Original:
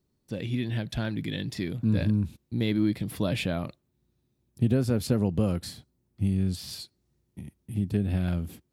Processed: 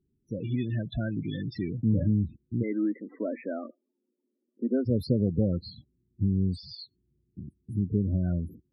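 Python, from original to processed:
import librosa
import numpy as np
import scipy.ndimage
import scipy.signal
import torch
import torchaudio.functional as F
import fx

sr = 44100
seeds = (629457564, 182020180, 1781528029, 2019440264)

y = fx.cheby1_bandpass(x, sr, low_hz=240.0, high_hz=2000.0, order=4, at=(2.62, 4.85), fade=0.02)
y = fx.spec_topn(y, sr, count=16)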